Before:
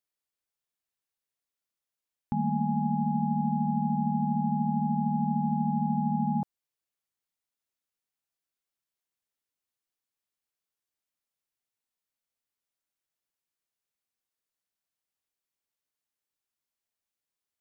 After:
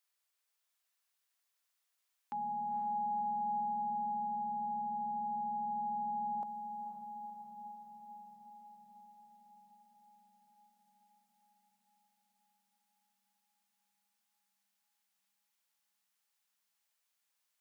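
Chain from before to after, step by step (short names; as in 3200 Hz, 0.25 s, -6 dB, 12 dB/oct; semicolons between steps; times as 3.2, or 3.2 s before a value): HPF 790 Hz 12 dB/oct; limiter -40 dBFS, peak gain reduction 8.5 dB; on a send: diffused feedback echo 0.499 s, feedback 71%, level -7.5 dB; on the sum: gain +6.5 dB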